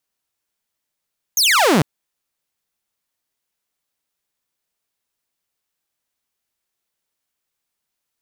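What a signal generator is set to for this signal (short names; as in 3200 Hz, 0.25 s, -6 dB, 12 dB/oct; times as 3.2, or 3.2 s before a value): laser zap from 6800 Hz, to 130 Hz, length 0.45 s saw, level -9 dB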